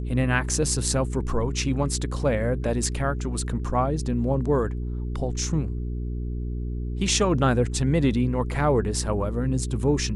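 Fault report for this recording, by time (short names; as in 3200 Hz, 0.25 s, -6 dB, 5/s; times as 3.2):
hum 60 Hz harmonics 7 -29 dBFS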